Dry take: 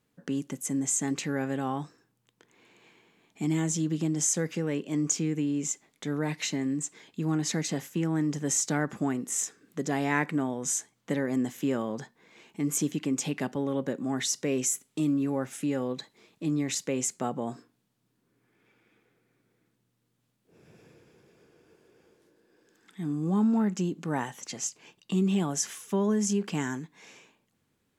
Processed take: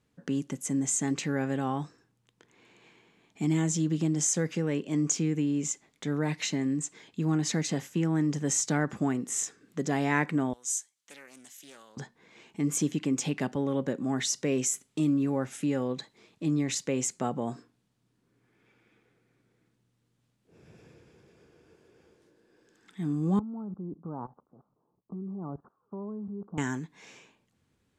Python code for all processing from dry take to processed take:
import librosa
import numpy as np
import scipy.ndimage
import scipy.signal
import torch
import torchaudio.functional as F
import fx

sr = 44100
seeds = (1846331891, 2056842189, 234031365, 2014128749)

y = fx.chain(x, sr, fx.differentiator(),
    fx.doppler_dist(depth_ms=0.24), at=(10.53, 11.97))
y = fx.chain(y, sr, fx.steep_lowpass(hz=1300.0, slope=72),
    fx.level_steps(step_db=19), at=(23.39, 26.58))
y = scipy.signal.sosfilt(scipy.signal.butter(2, 9600.0, 'lowpass', fs=sr, output='sos'), y)
y = fx.peak_eq(y, sr, hz=61.0, db=7.5, octaves=1.7)